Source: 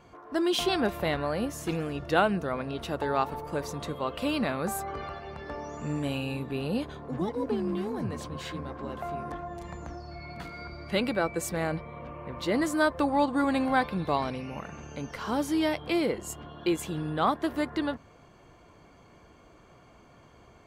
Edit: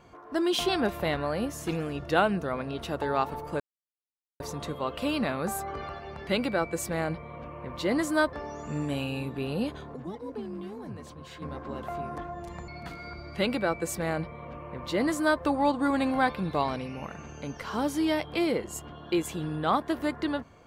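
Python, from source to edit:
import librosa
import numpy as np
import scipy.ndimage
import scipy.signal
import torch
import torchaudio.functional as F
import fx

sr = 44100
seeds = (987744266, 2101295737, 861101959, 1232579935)

y = fx.edit(x, sr, fx.insert_silence(at_s=3.6, length_s=0.8),
    fx.clip_gain(start_s=7.1, length_s=1.46, db=-7.5),
    fx.cut(start_s=9.82, length_s=0.4),
    fx.duplicate(start_s=10.9, length_s=2.06, to_s=5.47), tone=tone)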